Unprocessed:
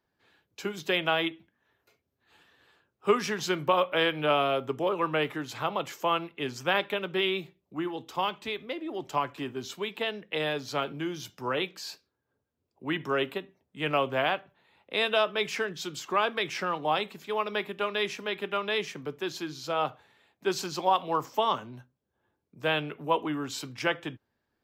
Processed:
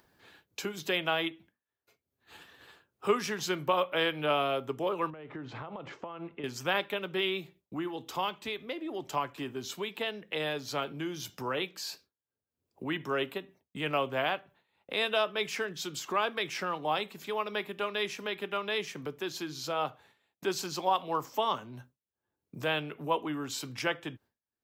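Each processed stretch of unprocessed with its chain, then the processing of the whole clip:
0:05.10–0:06.44: downward compressor 16 to 1, threshold −36 dBFS + head-to-tape spacing loss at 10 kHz 40 dB
whole clip: downward expander −51 dBFS; high-shelf EQ 7,600 Hz +6 dB; upward compression, threshold −29 dBFS; level −3.5 dB

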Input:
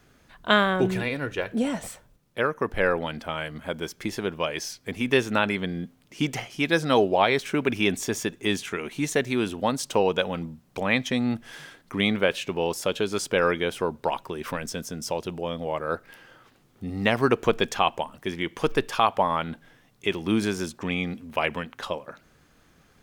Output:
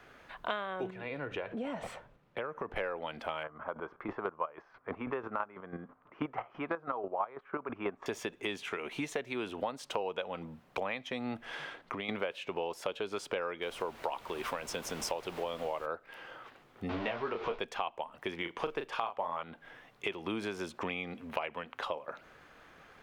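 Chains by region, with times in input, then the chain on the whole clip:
0:00.90–0:02.76: low-pass filter 3,000 Hz 6 dB per octave + parametric band 150 Hz +5 dB 1.4 octaves + downward compressor 2.5 to 1, threshold −37 dBFS
0:03.43–0:08.06: square-wave tremolo 6.1 Hz, depth 65%, duty 25% + low-pass with resonance 1,200 Hz, resonance Q 3.5
0:11.45–0:12.09: high-shelf EQ 7,900 Hz −10 dB + downward compressor, threshold −33 dBFS
0:13.61–0:15.85: bass and treble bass −2 dB, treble +7 dB + background noise pink −43 dBFS
0:16.89–0:17.59: converter with a step at zero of −24 dBFS + low-pass filter 4,900 Hz 24 dB per octave + micro pitch shift up and down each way 37 cents
0:18.37–0:19.43: high-shelf EQ 11,000 Hz −11.5 dB + noise that follows the level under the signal 35 dB + double-tracking delay 35 ms −7 dB
whole clip: three-way crossover with the lows and the highs turned down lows −13 dB, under 420 Hz, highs −15 dB, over 3,200 Hz; downward compressor 6 to 1, threshold −40 dBFS; dynamic equaliser 1,700 Hz, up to −5 dB, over −58 dBFS, Q 2.3; level +7 dB

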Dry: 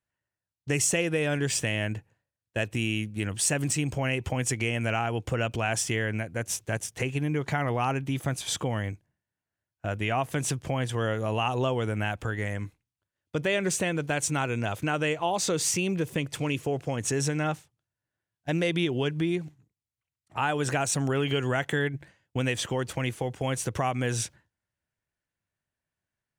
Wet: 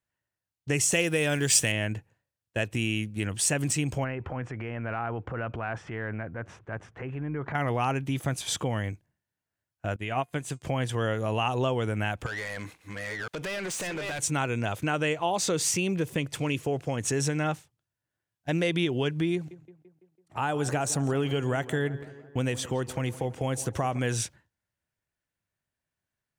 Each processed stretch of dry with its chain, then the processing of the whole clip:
0:00.92–0:01.72: high-shelf EQ 3,800 Hz +10 dB + floating-point word with a short mantissa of 4 bits
0:04.04–0:07.55: downward compressor 2 to 1, threshold −32 dBFS + low-pass with resonance 1,400 Hz, resonance Q 1.7 + transient designer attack −5 dB, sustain +4 dB
0:09.96–0:10.62: notch filter 5,600 Hz, Q 8.7 + hum removal 354.1 Hz, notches 27 + expander for the loud parts 2.5 to 1, over −40 dBFS
0:12.26–0:14.19: delay that plays each chunk backwards 510 ms, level −11 dB + downward compressor 16 to 1, threshold −36 dBFS + mid-hump overdrive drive 25 dB, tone 7,700 Hz, clips at −25.5 dBFS
0:19.34–0:23.99: dynamic equaliser 2,400 Hz, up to −6 dB, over −42 dBFS, Q 0.78 + tape delay 167 ms, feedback 64%, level −14.5 dB, low-pass 2,300 Hz
whole clip: no processing

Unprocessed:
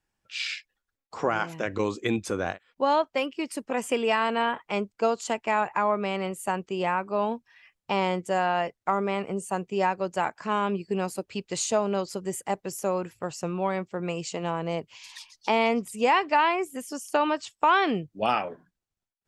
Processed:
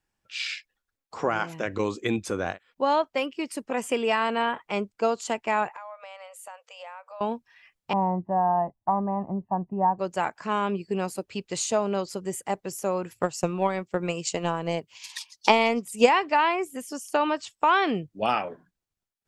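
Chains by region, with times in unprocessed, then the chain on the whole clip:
0:05.70–0:07.21: linear-phase brick-wall high-pass 470 Hz + downward compressor 3 to 1, threshold −43 dBFS
0:07.93–0:09.99: low-pass filter 1,000 Hz 24 dB per octave + comb filter 1.1 ms, depth 91%
0:13.10–0:16.09: high-pass filter 53 Hz + high-shelf EQ 4,400 Hz +6.5 dB + transient designer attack +8 dB, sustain −5 dB
whole clip: no processing

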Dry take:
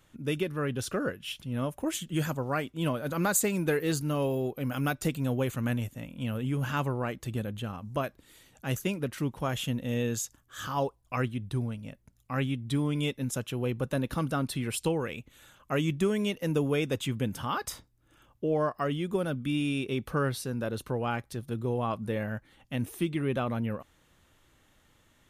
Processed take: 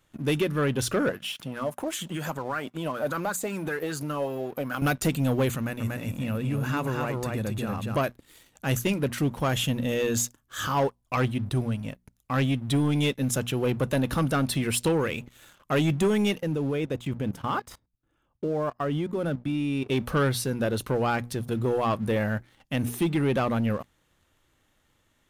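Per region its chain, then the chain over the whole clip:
0:01.09–0:04.82: high-pass filter 140 Hz + downward compressor 10 to 1, threshold −36 dBFS + auto-filter bell 5.1 Hz 610–1,600 Hz +11 dB
0:05.56–0:07.96: single-tap delay 237 ms −4 dB + downward compressor 2.5 to 1, threshold −33 dBFS + Butterworth band-reject 3,100 Hz, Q 7.1
0:16.40–0:19.90: high-shelf EQ 2,300 Hz −9 dB + output level in coarse steps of 17 dB
whole clip: mains-hum notches 60/120/180/240 Hz; leveller curve on the samples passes 2

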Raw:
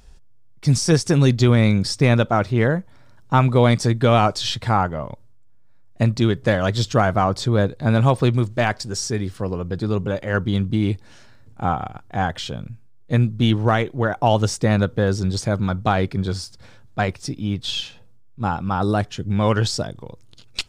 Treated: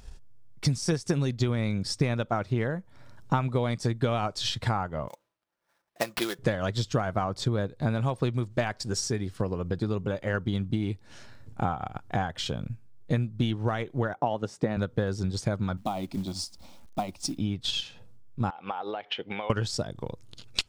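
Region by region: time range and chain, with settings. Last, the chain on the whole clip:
0:05.08–0:06.39: high-pass filter 550 Hz + comb filter 5.9 ms, depth 46% + sample-rate reduction 7,200 Hz, jitter 20%
0:14.14–0:14.77: high-pass filter 170 Hz + high-shelf EQ 2,900 Hz −12 dB
0:15.77–0:17.38: downward compressor 2 to 1, threshold −25 dBFS + phaser with its sweep stopped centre 440 Hz, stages 6 + log-companded quantiser 6 bits
0:18.50–0:19.50: loudspeaker in its box 460–3,900 Hz, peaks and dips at 480 Hz +6 dB, 800 Hz +9 dB, 2,200 Hz +10 dB, 3,100 Hz +9 dB + downward compressor 12 to 1, threshold −29 dBFS
whole clip: downward compressor 3 to 1, threshold −29 dBFS; transient designer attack +4 dB, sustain −4 dB

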